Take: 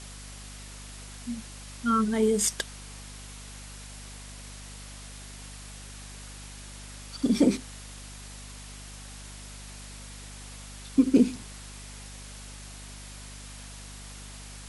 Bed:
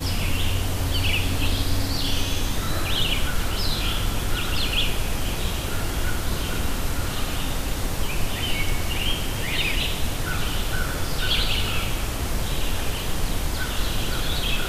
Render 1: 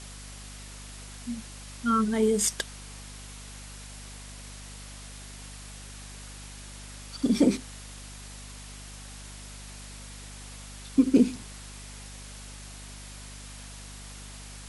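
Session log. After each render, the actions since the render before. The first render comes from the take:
no processing that can be heard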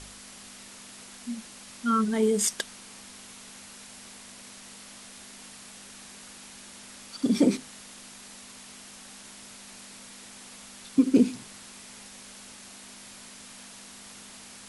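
hum removal 50 Hz, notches 3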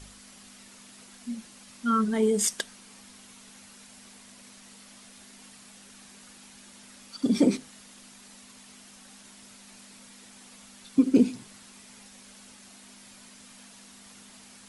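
broadband denoise 6 dB, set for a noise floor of −47 dBFS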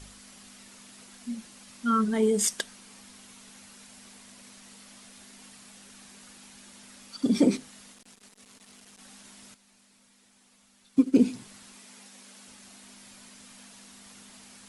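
0:07.92–0:08.99: saturating transformer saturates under 1,100 Hz
0:09.54–0:11.21: expander for the loud parts, over −38 dBFS
0:11.75–0:12.48: high-pass filter 170 Hz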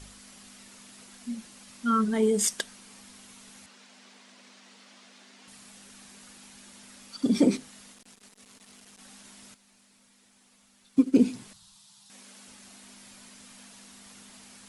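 0:03.66–0:05.48: band-pass filter 250–5,300 Hz
0:11.53–0:12.10: drawn EQ curve 170 Hz 0 dB, 240 Hz −24 dB, 390 Hz −28 dB, 950 Hz −7 dB, 2,200 Hz −18 dB, 3,700 Hz 0 dB, 6,200 Hz −5 dB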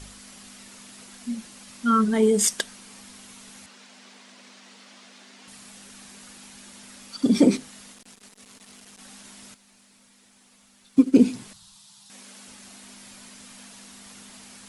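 level +4.5 dB

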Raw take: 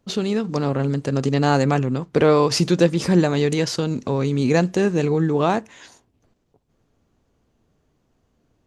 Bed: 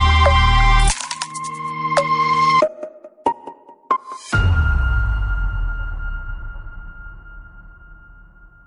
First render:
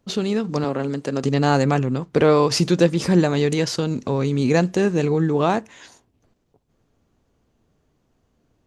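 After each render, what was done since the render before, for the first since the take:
0:00.64–0:01.24: high-pass filter 210 Hz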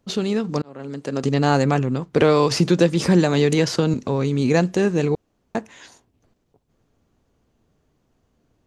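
0:00.62–0:01.21: fade in
0:02.20–0:03.94: multiband upward and downward compressor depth 70%
0:05.15–0:05.55: fill with room tone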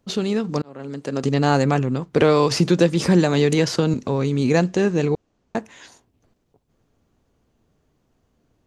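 0:04.64–0:05.56: low-pass filter 8,000 Hz 24 dB per octave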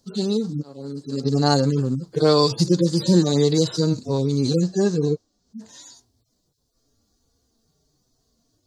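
harmonic-percussive split with one part muted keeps harmonic
high shelf with overshoot 3,400 Hz +10.5 dB, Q 3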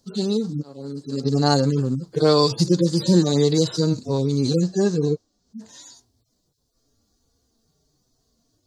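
no processing that can be heard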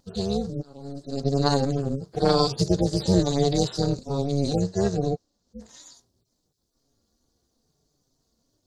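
amplitude modulation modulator 280 Hz, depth 80%
pitch vibrato 0.53 Hz 10 cents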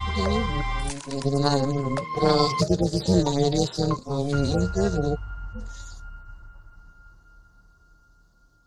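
mix in bed −14.5 dB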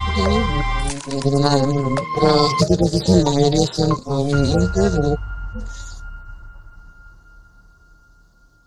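level +6.5 dB
brickwall limiter −1 dBFS, peak gain reduction 3 dB

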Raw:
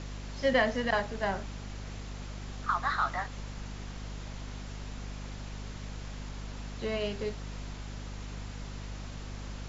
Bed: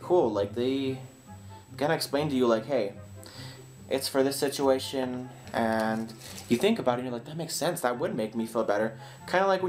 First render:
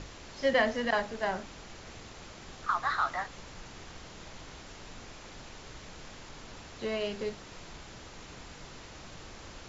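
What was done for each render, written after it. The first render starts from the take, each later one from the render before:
mains-hum notches 50/100/150/200/250 Hz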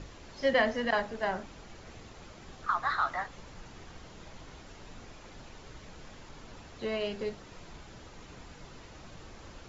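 broadband denoise 6 dB, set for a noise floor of −49 dBFS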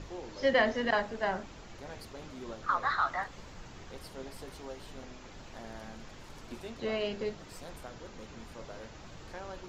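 mix in bed −20.5 dB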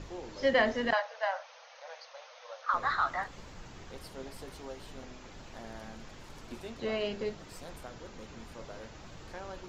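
0:00.93–0:02.74: linear-phase brick-wall band-pass 470–6,600 Hz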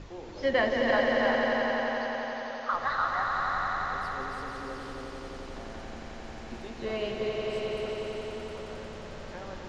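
high-frequency loss of the air 65 metres
on a send: echo that builds up and dies away 89 ms, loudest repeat 5, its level −6 dB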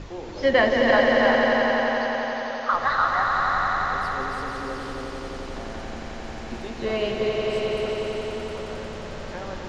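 level +7 dB

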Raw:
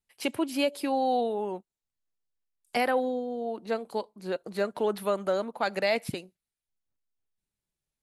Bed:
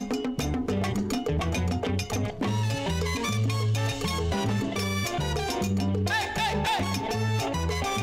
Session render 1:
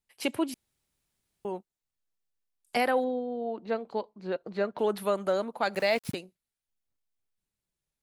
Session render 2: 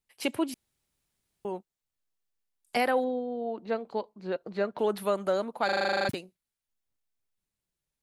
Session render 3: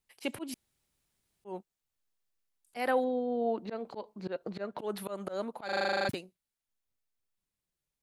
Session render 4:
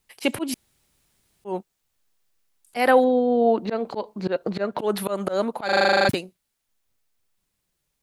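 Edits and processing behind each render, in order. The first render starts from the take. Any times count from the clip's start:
0:00.54–0:01.45: fill with room tone; 0:03.04–0:04.79: high-frequency loss of the air 170 metres; 0:05.75–0:06.15: centre clipping without the shift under −41 dBFS
0:05.65: stutter in place 0.04 s, 11 plays
speech leveller within 4 dB 0.5 s; volume swells 156 ms
level +12 dB

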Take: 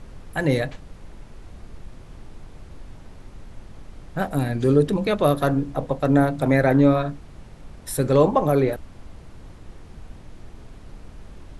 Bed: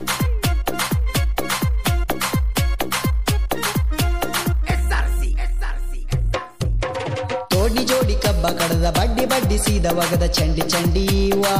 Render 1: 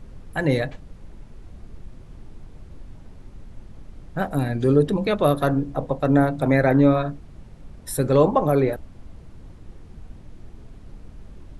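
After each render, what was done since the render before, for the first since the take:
broadband denoise 6 dB, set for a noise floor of −44 dBFS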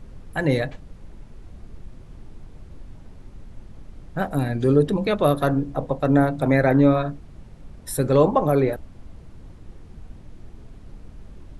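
no processing that can be heard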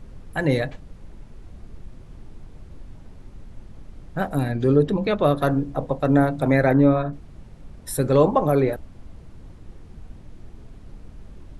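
0:04.52–0:05.42: high-frequency loss of the air 57 metres
0:06.73–0:07.13: high-shelf EQ 2,700 Hz −10 dB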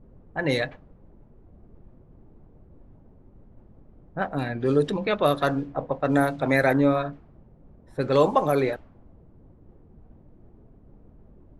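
low-pass that shuts in the quiet parts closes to 450 Hz, open at −13 dBFS
spectral tilt +2.5 dB per octave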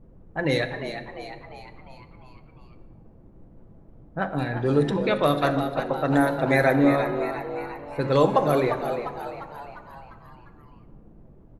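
on a send: echo with shifted repeats 350 ms, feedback 53%, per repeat +100 Hz, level −9.5 dB
on the sum: rectangular room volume 2,300 cubic metres, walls mixed, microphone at 0.7 metres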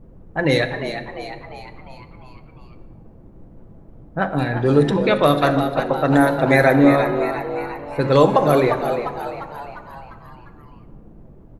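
level +6 dB
brickwall limiter −2 dBFS, peak gain reduction 3 dB

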